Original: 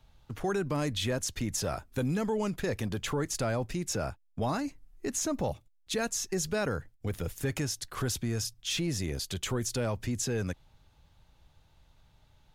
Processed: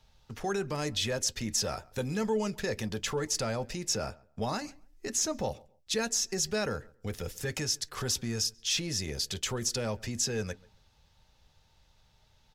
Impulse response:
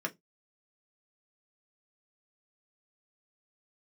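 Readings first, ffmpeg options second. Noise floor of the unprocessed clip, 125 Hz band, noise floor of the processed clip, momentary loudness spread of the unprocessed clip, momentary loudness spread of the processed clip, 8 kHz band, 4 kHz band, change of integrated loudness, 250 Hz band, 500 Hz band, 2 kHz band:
−65 dBFS, −4.0 dB, −66 dBFS, 6 LU, 9 LU, +3.5 dB, +4.5 dB, +0.5 dB, −3.0 dB, −0.5 dB, 0.0 dB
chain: -filter_complex "[0:a]equalizer=frequency=5400:width=1.8:gain=9.5,asplit=2[link_01][link_02];[link_02]adelay=137,lowpass=frequency=1900:poles=1,volume=-23dB,asplit=2[link_03][link_04];[link_04]adelay=137,lowpass=frequency=1900:poles=1,volume=0.23[link_05];[link_01][link_03][link_05]amix=inputs=3:normalize=0,asplit=2[link_06][link_07];[1:a]atrim=start_sample=2205,asetrate=61740,aresample=44100[link_08];[link_07][link_08]afir=irnorm=-1:irlink=0,volume=-6.5dB[link_09];[link_06][link_09]amix=inputs=2:normalize=0,volume=-3.5dB"

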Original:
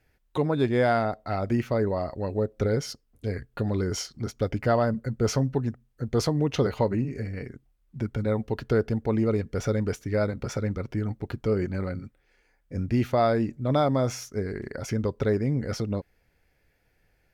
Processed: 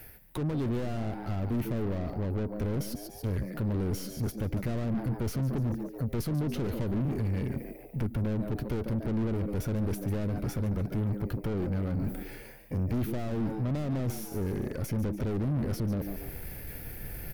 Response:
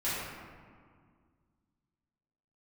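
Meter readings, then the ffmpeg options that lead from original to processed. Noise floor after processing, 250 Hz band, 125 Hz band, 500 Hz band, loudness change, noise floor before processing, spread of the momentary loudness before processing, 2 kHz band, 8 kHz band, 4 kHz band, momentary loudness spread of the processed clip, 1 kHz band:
−47 dBFS, −3.0 dB, −2.0 dB, −10.0 dB, −5.0 dB, −69 dBFS, 11 LU, −9.0 dB, −6.5 dB, −9.0 dB, 7 LU, −12.0 dB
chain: -filter_complex "[0:a]areverse,acompressor=mode=upward:threshold=-27dB:ratio=2.5,areverse,asplit=5[link_01][link_02][link_03][link_04][link_05];[link_02]adelay=143,afreqshift=96,volume=-14dB[link_06];[link_03]adelay=286,afreqshift=192,volume=-22dB[link_07];[link_04]adelay=429,afreqshift=288,volume=-29.9dB[link_08];[link_05]adelay=572,afreqshift=384,volume=-37.9dB[link_09];[link_01][link_06][link_07][link_08][link_09]amix=inputs=5:normalize=0,aexciter=amount=8.7:drive=4.5:freq=9600,aeval=exprs='(tanh(50.1*val(0)+0.3)-tanh(0.3))/50.1':channel_layout=same,acrossover=split=370[link_10][link_11];[link_11]acompressor=threshold=-52dB:ratio=4[link_12];[link_10][link_12]amix=inputs=2:normalize=0,volume=8dB"

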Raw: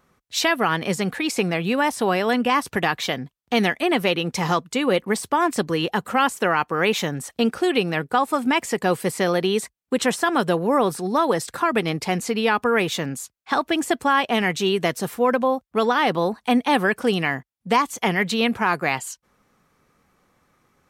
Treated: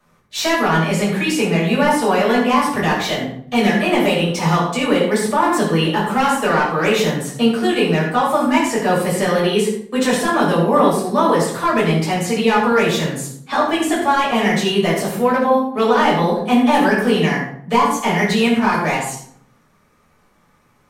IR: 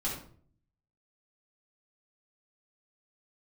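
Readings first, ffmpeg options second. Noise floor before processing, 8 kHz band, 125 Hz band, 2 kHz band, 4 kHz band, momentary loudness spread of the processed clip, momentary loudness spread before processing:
−73 dBFS, +4.0 dB, +8.0 dB, +3.5 dB, +3.5 dB, 5 LU, 5 LU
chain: -filter_complex "[0:a]lowshelf=frequency=400:gain=-5,acrossover=split=280|970[link_01][link_02][link_03];[link_03]asoftclip=type=tanh:threshold=-21dB[link_04];[link_01][link_02][link_04]amix=inputs=3:normalize=0[link_05];[1:a]atrim=start_sample=2205,asetrate=33516,aresample=44100[link_06];[link_05][link_06]afir=irnorm=-1:irlink=0"

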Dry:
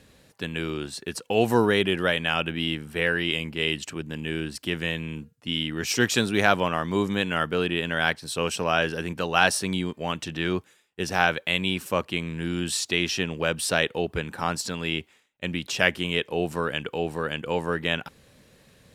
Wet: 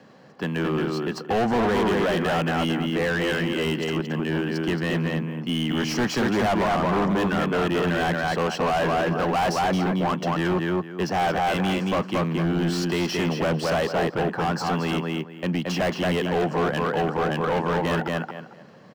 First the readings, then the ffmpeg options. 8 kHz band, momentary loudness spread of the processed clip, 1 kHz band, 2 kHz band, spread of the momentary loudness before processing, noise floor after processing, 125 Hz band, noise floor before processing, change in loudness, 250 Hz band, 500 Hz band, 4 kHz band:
−6.0 dB, 5 LU, +4.5 dB, −2.0 dB, 10 LU, −43 dBFS, +5.0 dB, −61 dBFS, +2.0 dB, +5.0 dB, +3.0 dB, −3.5 dB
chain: -filter_complex "[0:a]highpass=frequency=150:width=0.5412,highpass=frequency=150:width=1.3066,equalizer=frequency=280:width_type=q:width=4:gain=-3,equalizer=frequency=440:width_type=q:width=4:gain=-3,equalizer=frequency=750:width_type=q:width=4:gain=5,equalizer=frequency=1100:width_type=q:width=4:gain=4,equalizer=frequency=2400:width_type=q:width=4:gain=-7,equalizer=frequency=3600:width_type=q:width=4:gain=-3,lowpass=frequency=5700:width=0.5412,lowpass=frequency=5700:width=1.3066,asplit=2[link_01][link_02];[link_02]adelay=224,lowpass=frequency=3100:poles=1,volume=-3dB,asplit=2[link_03][link_04];[link_04]adelay=224,lowpass=frequency=3100:poles=1,volume=0.22,asplit=2[link_05][link_06];[link_06]adelay=224,lowpass=frequency=3100:poles=1,volume=0.22[link_07];[link_01][link_03][link_05][link_07]amix=inputs=4:normalize=0,acrossover=split=210|900|2100[link_08][link_09][link_10][link_11];[link_10]alimiter=limit=-22.5dB:level=0:latency=1[link_12];[link_11]acrusher=bits=3:mode=log:mix=0:aa=0.000001[link_13];[link_08][link_09][link_12][link_13]amix=inputs=4:normalize=0,bandreject=frequency=3700:width=8,volume=27.5dB,asoftclip=hard,volume=-27.5dB,highshelf=frequency=2300:gain=-9,volume=8.5dB"

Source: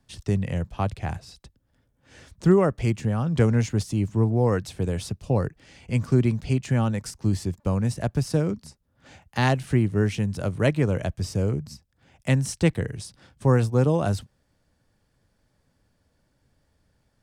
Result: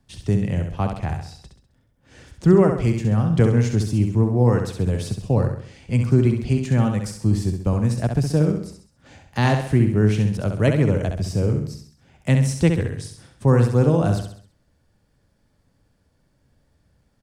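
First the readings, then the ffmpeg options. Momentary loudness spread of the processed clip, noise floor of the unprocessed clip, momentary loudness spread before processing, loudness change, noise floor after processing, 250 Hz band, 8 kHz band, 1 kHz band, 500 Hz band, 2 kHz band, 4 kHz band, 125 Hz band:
10 LU, −70 dBFS, 10 LU, +4.5 dB, −65 dBFS, +4.5 dB, +1.0 dB, +2.0 dB, +3.5 dB, +1.5 dB, +1.0 dB, +5.0 dB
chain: -filter_complex "[0:a]lowshelf=frequency=470:gain=4,asplit=2[link_01][link_02];[link_02]aecho=0:1:66|132|198|264|330:0.501|0.226|0.101|0.0457|0.0206[link_03];[link_01][link_03]amix=inputs=2:normalize=0"

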